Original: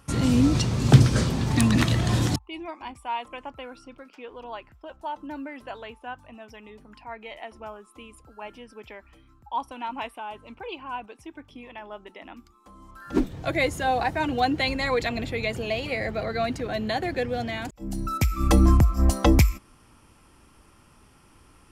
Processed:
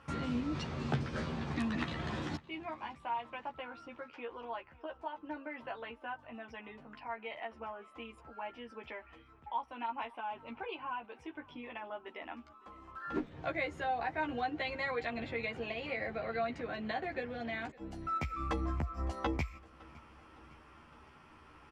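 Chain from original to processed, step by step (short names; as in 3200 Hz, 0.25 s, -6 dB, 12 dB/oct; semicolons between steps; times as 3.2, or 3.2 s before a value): LPF 2000 Hz 12 dB/oct; tilt +2.5 dB/oct; compressor 2:1, threshold -44 dBFS, peak gain reduction 16 dB; doubler 13 ms -3 dB; on a send: feedback echo 0.56 s, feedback 60%, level -23.5 dB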